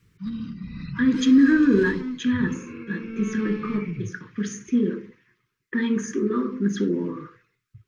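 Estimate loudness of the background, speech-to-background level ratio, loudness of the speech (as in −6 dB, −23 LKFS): −35.0 LKFS, 12.0 dB, −23.0 LKFS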